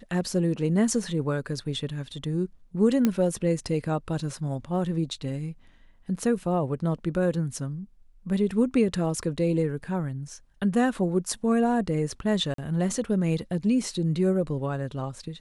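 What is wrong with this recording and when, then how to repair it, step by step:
0:03.05: click −10 dBFS
0:12.54–0:12.58: drop-out 43 ms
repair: click removal
repair the gap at 0:12.54, 43 ms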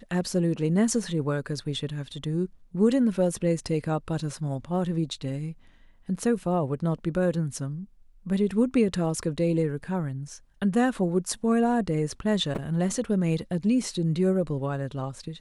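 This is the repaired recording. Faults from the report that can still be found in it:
none of them is left

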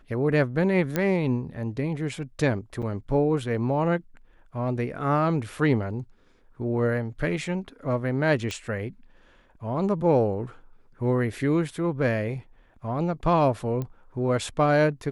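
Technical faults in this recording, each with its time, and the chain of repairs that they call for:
0:00.96: click −11 dBFS
0:02.82–0:02.83: drop-out 6.5 ms
0:08.51: click −18 dBFS
0:13.82: click −20 dBFS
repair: click removal
repair the gap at 0:02.82, 6.5 ms

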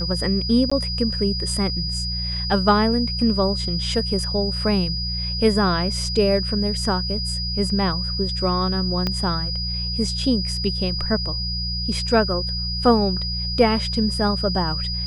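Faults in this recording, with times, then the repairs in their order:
mains hum 60 Hz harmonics 3 −28 dBFS
whistle 4,900 Hz −26 dBFS
0:00.70–0:00.71: drop-out 15 ms
0:09.07: click −10 dBFS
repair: click removal
hum removal 60 Hz, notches 3
notch filter 4,900 Hz, Q 30
repair the gap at 0:00.70, 15 ms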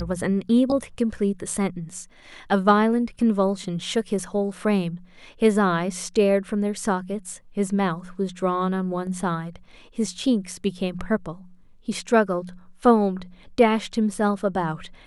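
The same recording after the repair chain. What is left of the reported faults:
0:09.07: click

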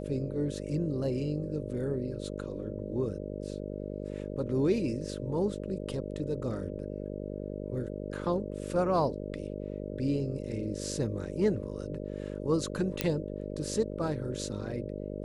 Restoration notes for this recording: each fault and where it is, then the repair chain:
mains buzz 50 Hz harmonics 12 −38 dBFS
0:13.01: click −10 dBFS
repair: click removal
hum removal 50 Hz, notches 12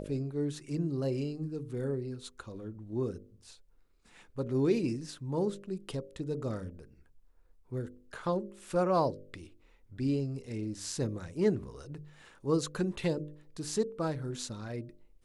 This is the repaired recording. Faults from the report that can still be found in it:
0:13.01: click

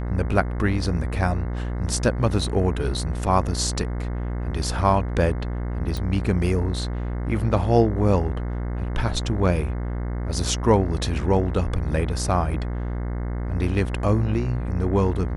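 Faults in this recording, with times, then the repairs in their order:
mains buzz 60 Hz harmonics 36 −27 dBFS
0:05.97: click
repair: click removal
hum removal 60 Hz, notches 36

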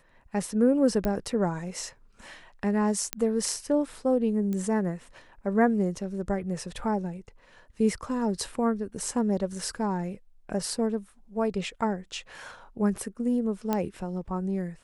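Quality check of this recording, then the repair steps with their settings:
0:01.05: click −16 dBFS
0:03.13: click −9 dBFS
0:04.53: click −21 dBFS
0:13.73: click −13 dBFS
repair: click removal

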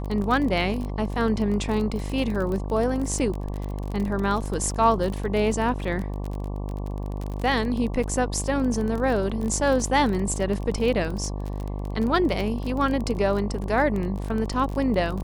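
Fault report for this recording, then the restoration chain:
mains buzz 50 Hz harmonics 23 −30 dBFS
surface crackle 29 per second −28 dBFS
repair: click removal
hum removal 50 Hz, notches 23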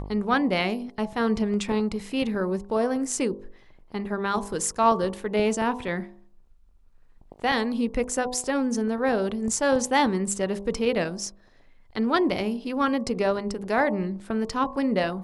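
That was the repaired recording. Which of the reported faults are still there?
none of them is left

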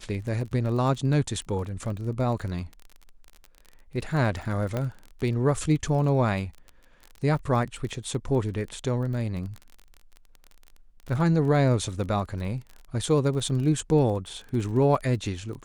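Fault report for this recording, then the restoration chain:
surface crackle 30 per second −34 dBFS
0:04.77: click −16 dBFS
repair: click removal

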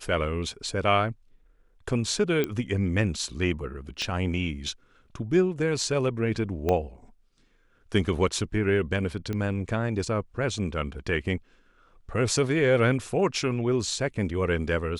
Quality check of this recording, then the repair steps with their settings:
0:02.44: click −13 dBFS
0:04.02: click −20 dBFS
0:06.69: click −13 dBFS
0:09.33: click −19 dBFS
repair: click removal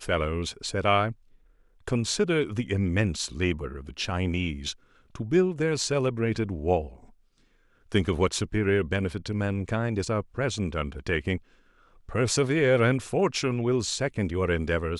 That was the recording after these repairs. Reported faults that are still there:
0:04.02: click
0:06.69: click

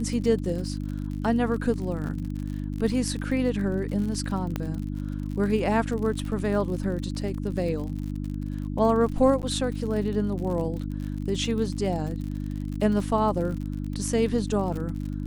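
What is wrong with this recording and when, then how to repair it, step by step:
surface crackle 56 per second −33 dBFS
mains hum 50 Hz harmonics 6 −31 dBFS
0:04.56: click −15 dBFS
0:09.42–0:09.43: drop-out 9.5 ms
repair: click removal
hum removal 50 Hz, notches 6
repair the gap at 0:09.42, 9.5 ms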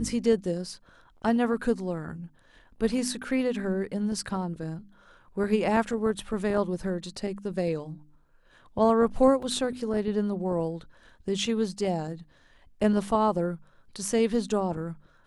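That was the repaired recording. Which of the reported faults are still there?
none of them is left

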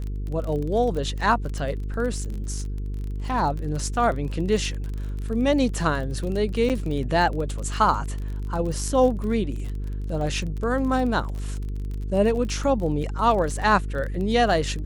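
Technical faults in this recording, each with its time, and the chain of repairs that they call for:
mains buzz 50 Hz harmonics 9 −29 dBFS
surface crackle 32 per second −30 dBFS
0:06.69–0:06.70: drop-out 8.2 ms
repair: click removal
hum removal 50 Hz, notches 9
repair the gap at 0:06.69, 8.2 ms

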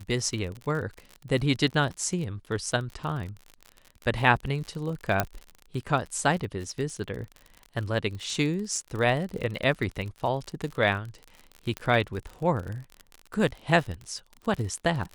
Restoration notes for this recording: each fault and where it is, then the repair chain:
surface crackle 48 per second −33 dBFS
0:05.20: click −8 dBFS
0:11.77: click −17 dBFS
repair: click removal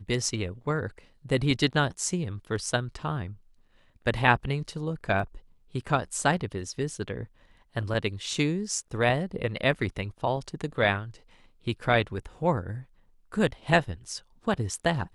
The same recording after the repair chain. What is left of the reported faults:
0:05.20: click

